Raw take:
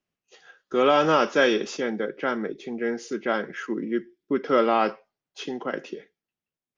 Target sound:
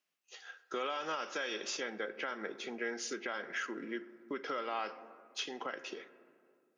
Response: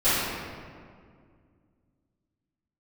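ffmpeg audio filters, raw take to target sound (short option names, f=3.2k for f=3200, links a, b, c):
-filter_complex "[0:a]acompressor=threshold=-28dB:ratio=4,highpass=f=1.4k:p=1,asplit=2[a][b];[1:a]atrim=start_sample=2205,lowpass=2.2k[c];[b][c]afir=irnorm=-1:irlink=0,volume=-32dB[d];[a][d]amix=inputs=2:normalize=0,alimiter=level_in=6dB:limit=-24dB:level=0:latency=1:release=223,volume=-6dB,volume=3dB"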